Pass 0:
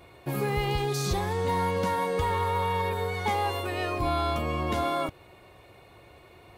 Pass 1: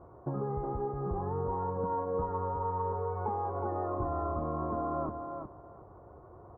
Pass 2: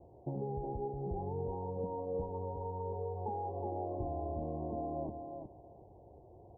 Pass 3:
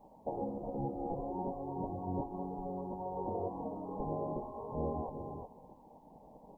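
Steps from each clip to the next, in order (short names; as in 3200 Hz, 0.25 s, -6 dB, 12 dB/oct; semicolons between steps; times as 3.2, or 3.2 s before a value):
steep low-pass 1300 Hz 48 dB/oct; compressor, threshold -31 dBFS, peak gain reduction 8 dB; on a send: feedback echo 0.365 s, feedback 17%, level -6 dB
steep low-pass 880 Hz 72 dB/oct; gain -4 dB
spectral gate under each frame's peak -10 dB weak; gain +10 dB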